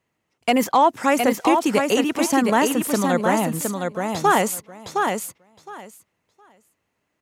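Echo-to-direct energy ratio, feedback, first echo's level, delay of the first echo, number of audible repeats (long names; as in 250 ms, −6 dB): −4.5 dB, 16%, −4.5 dB, 714 ms, 2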